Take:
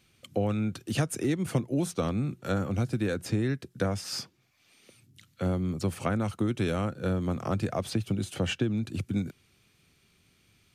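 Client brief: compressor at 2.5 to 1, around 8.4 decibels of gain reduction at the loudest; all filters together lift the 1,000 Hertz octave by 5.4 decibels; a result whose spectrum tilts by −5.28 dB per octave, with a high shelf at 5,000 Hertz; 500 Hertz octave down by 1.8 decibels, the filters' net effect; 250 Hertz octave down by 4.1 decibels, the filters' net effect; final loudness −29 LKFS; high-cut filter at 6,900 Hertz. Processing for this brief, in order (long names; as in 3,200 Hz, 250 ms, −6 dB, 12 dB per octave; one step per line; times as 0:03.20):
low-pass filter 6,900 Hz
parametric band 250 Hz −5.5 dB
parametric band 500 Hz −3 dB
parametric band 1,000 Hz +9 dB
high-shelf EQ 5,000 Hz −3 dB
downward compressor 2.5 to 1, threshold −36 dBFS
level +9.5 dB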